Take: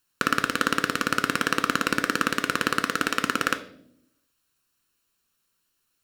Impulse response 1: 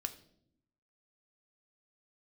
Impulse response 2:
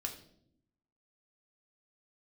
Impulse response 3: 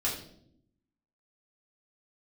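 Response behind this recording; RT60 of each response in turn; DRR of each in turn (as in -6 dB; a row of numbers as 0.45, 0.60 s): 1; 0.70, 0.70, 0.70 s; 8.5, 2.5, -5.5 dB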